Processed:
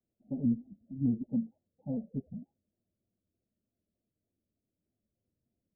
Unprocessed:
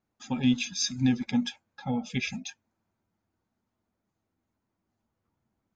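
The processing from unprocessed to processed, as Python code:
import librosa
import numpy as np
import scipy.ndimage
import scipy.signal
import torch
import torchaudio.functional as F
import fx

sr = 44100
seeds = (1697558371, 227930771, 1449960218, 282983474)

y = scipy.signal.sosfilt(scipy.signal.butter(12, 660.0, 'lowpass', fs=sr, output='sos'), x)
y = fx.vibrato_shape(y, sr, shape='square', rate_hz=3.3, depth_cents=100.0)
y = y * librosa.db_to_amplitude(-5.0)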